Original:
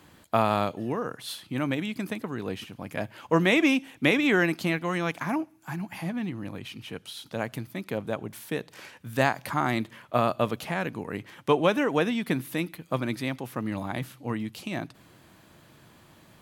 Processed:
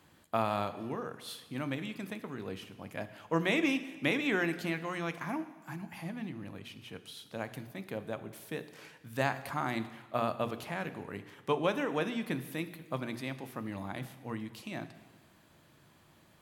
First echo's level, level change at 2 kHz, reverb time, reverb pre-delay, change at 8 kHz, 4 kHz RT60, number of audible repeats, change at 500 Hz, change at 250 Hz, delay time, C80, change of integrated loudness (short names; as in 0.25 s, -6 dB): none, -7.0 dB, 1.4 s, 7 ms, -7.0 dB, 1.3 s, none, -7.5 dB, -8.0 dB, none, 14.5 dB, -7.5 dB